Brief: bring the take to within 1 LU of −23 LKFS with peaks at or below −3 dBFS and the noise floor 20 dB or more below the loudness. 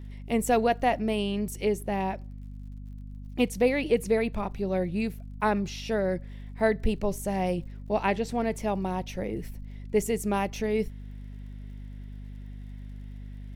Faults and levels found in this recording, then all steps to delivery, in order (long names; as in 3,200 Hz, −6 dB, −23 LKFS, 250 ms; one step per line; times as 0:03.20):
crackle rate 44 per second; mains hum 50 Hz; hum harmonics up to 250 Hz; level of the hum −38 dBFS; integrated loudness −28.5 LKFS; sample peak −9.5 dBFS; target loudness −23.0 LKFS
→ click removal
mains-hum notches 50/100/150/200/250 Hz
level +5.5 dB